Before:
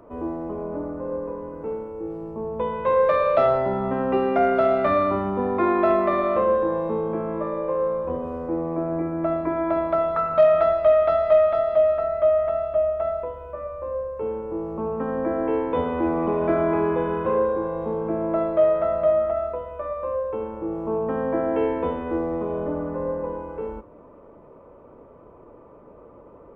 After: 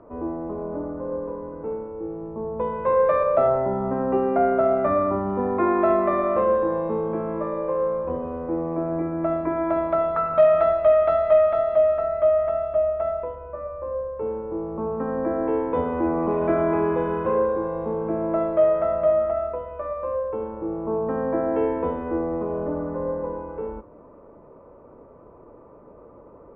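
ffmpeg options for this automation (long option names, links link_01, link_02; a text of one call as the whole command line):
ffmpeg -i in.wav -af "asetnsamples=nb_out_samples=441:pad=0,asendcmd='3.23 lowpass f 1300;5.3 lowpass f 2000;6.38 lowpass f 2900;13.35 lowpass f 1900;16.31 lowpass f 2800;20.28 lowpass f 1900',lowpass=1800" out.wav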